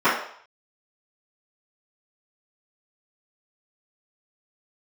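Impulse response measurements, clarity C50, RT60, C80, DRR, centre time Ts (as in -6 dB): 3.5 dB, 0.60 s, 8.0 dB, -17.0 dB, 42 ms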